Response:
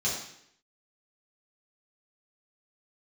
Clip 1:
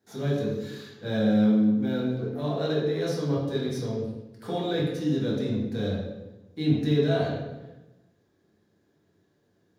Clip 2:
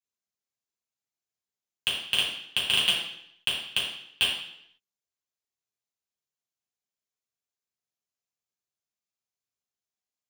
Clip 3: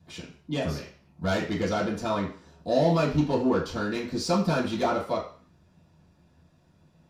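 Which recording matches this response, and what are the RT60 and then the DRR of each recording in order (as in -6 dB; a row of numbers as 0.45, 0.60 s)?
2; 1.1, 0.70, 0.40 s; -5.5, -8.0, -10.0 dB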